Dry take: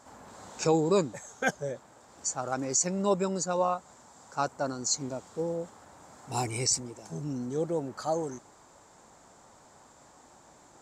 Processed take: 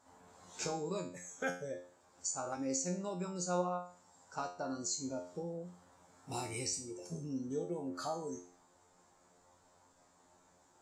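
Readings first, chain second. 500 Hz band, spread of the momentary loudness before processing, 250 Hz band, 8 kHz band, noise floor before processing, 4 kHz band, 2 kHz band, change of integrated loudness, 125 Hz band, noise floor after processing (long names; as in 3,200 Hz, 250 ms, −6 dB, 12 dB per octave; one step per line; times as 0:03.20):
−10.0 dB, 12 LU, −7.5 dB, −9.0 dB, −57 dBFS, −9.0 dB, −9.0 dB, −9.0 dB, −9.0 dB, −68 dBFS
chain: noise reduction from a noise print of the clip's start 11 dB
downward compressor 4 to 1, threshold −36 dBFS, peak gain reduction 13.5 dB
tuned comb filter 89 Hz, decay 0.43 s, harmonics all, mix 90%
level +9.5 dB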